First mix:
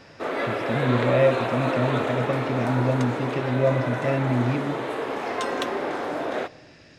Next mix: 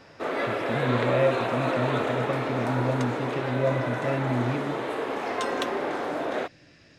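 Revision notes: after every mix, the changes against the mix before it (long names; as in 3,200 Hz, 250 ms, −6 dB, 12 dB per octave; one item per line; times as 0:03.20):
speech −4.0 dB
background: send off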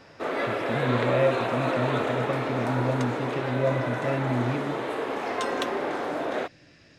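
nothing changed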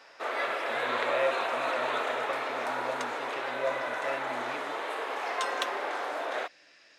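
master: add high-pass filter 700 Hz 12 dB per octave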